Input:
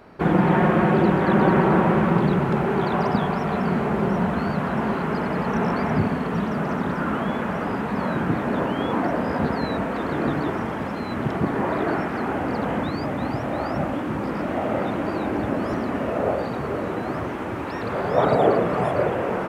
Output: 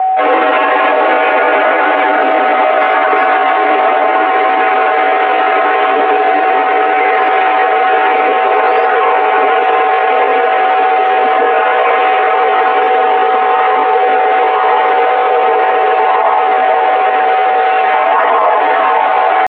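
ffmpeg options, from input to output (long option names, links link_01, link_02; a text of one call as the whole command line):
ffmpeg -i in.wav -af "aecho=1:1:7.2:1,asetrate=64194,aresample=44100,atempo=0.686977,aeval=exprs='val(0)+0.0891*sin(2*PI*700*n/s)':channel_layout=same,highpass=frequency=360:width_type=q:width=0.5412,highpass=frequency=360:width_type=q:width=1.307,lowpass=frequency=3100:width_type=q:width=0.5176,lowpass=frequency=3100:width_type=q:width=0.7071,lowpass=frequency=3100:width_type=q:width=1.932,afreqshift=54,alimiter=level_in=13.5dB:limit=-1dB:release=50:level=0:latency=1,volume=-1dB" out.wav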